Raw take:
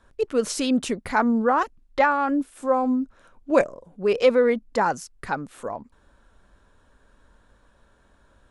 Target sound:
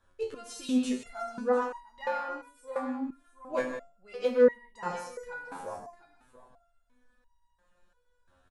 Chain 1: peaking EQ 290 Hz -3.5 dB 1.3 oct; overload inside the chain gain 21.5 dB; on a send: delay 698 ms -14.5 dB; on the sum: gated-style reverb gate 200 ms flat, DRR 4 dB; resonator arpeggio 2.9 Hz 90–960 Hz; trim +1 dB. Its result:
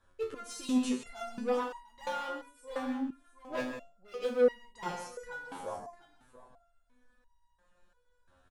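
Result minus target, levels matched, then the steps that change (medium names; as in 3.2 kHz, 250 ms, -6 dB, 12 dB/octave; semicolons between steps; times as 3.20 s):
overload inside the chain: distortion +17 dB
change: overload inside the chain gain 11.5 dB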